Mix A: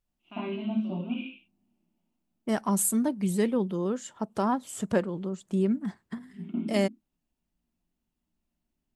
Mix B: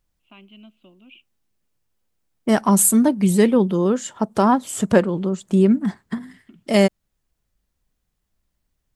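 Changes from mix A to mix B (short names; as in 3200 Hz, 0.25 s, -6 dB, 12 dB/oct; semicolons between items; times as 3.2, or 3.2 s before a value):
second voice +10.5 dB; reverb: off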